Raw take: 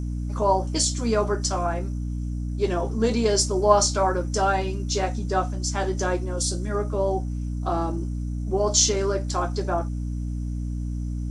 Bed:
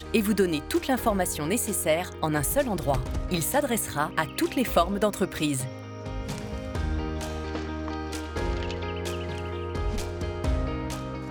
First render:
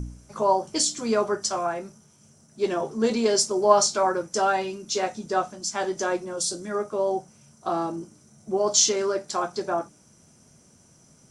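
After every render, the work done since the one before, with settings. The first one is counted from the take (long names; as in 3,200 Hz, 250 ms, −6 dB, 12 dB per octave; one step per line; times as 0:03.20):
hum removal 60 Hz, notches 5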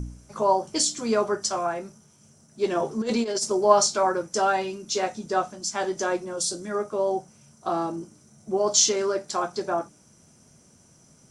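0:02.75–0:03.57: compressor whose output falls as the input rises −24 dBFS, ratio −0.5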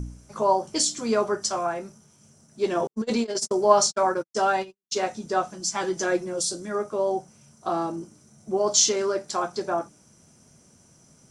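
0:02.87–0:04.99: noise gate −29 dBFS, range −58 dB
0:05.51–0:06.41: comb filter 6 ms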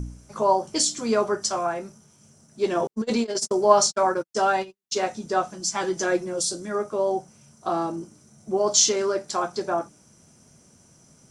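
level +1 dB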